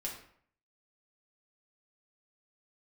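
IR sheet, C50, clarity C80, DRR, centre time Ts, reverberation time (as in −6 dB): 6.0 dB, 9.0 dB, −3.0 dB, 29 ms, 0.60 s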